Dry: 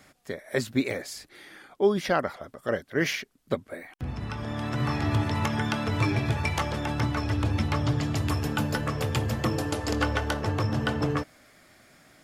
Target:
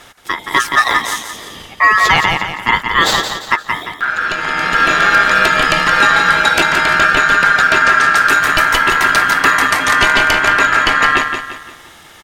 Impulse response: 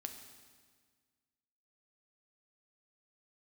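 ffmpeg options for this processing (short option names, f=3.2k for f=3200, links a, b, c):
-af "aeval=exprs='val(0)*sin(2*PI*1500*n/s)':c=same,aecho=1:1:173|346|519|692:0.422|0.164|0.0641|0.025,apsyclip=20dB,volume=-2dB"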